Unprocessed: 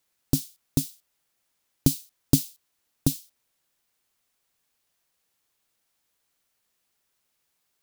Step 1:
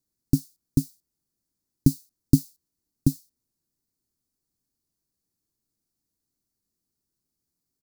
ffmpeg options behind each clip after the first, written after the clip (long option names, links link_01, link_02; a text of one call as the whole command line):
ffmpeg -i in.wav -af "firequalizer=gain_entry='entry(300,0);entry(540,-16);entry(3000,-28);entry(4400,-11)':delay=0.05:min_phase=1,volume=3.5dB" out.wav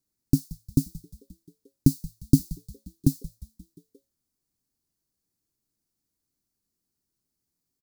ffmpeg -i in.wav -filter_complex "[0:a]asplit=6[link_01][link_02][link_03][link_04][link_05][link_06];[link_02]adelay=176,afreqshift=-110,volume=-17.5dB[link_07];[link_03]adelay=352,afreqshift=-220,volume=-22.4dB[link_08];[link_04]adelay=528,afreqshift=-330,volume=-27.3dB[link_09];[link_05]adelay=704,afreqshift=-440,volume=-32.1dB[link_10];[link_06]adelay=880,afreqshift=-550,volume=-37dB[link_11];[link_01][link_07][link_08][link_09][link_10][link_11]amix=inputs=6:normalize=0" out.wav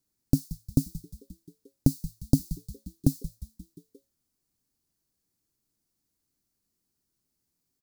ffmpeg -i in.wav -af "acompressor=threshold=-20dB:ratio=2.5,volume=2dB" out.wav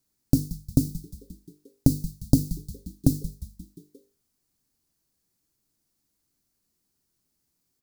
ffmpeg -i in.wav -af "bandreject=frequency=50:width_type=h:width=6,bandreject=frequency=100:width_type=h:width=6,bandreject=frequency=150:width_type=h:width=6,bandreject=frequency=200:width_type=h:width=6,bandreject=frequency=250:width_type=h:width=6,bandreject=frequency=300:width_type=h:width=6,bandreject=frequency=350:width_type=h:width=6,bandreject=frequency=400:width_type=h:width=6,bandreject=frequency=450:width_type=h:width=6,bandreject=frequency=500:width_type=h:width=6,volume=4dB" out.wav